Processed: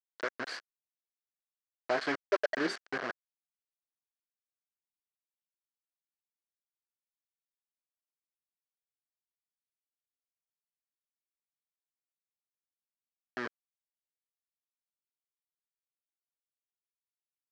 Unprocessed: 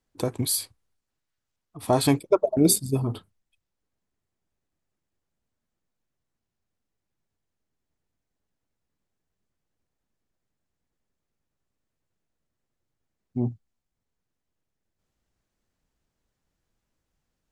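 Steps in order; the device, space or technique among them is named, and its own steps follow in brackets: hand-held game console (bit crusher 4-bit; cabinet simulation 480–4400 Hz, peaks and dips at 890 Hz -7 dB, 1.6 kHz +9 dB, 2.6 kHz -5 dB, 3.6 kHz -9 dB); trim -6.5 dB

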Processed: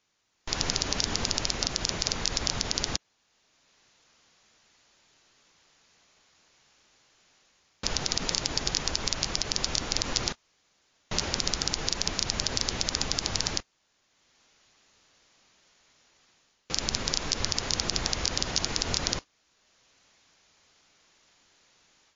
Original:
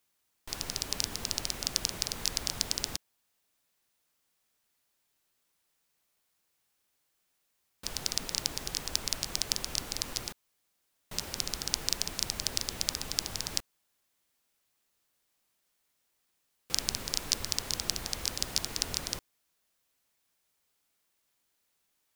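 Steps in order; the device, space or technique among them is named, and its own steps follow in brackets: low-bitrate web radio (level rider gain up to 11.5 dB; peak limiter -9.5 dBFS, peak gain reduction 8.5 dB; trim +6.5 dB; MP3 48 kbps 16 kHz)

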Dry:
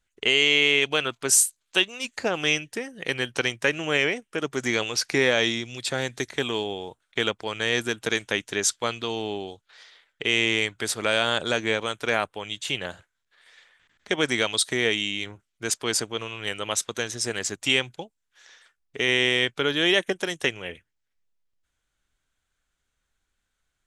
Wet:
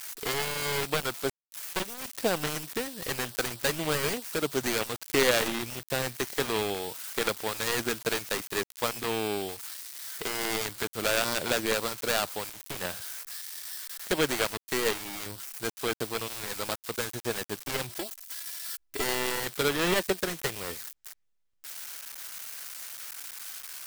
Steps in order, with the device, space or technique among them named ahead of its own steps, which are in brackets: budget class-D amplifier (dead-time distortion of 0.22 ms; zero-crossing glitches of -22.5 dBFS); 17.89–19.04 s: comb 3 ms, depth 80%

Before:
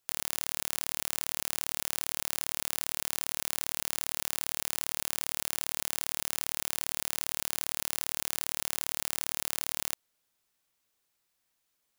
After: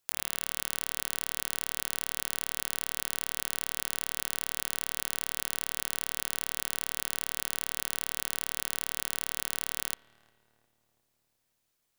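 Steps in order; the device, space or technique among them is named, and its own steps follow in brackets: dub delay into a spring reverb (filtered feedback delay 355 ms, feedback 62%, low-pass 1.2 kHz, level -23 dB; spring tank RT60 2 s, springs 37/46 ms, chirp 65 ms, DRR 20 dB)

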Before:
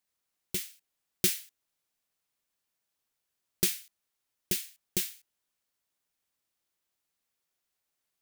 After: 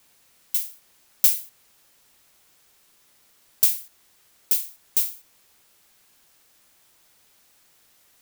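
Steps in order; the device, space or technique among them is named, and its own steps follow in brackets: turntable without a phono preamp (RIAA curve recording; white noise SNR 29 dB); trim -6.5 dB

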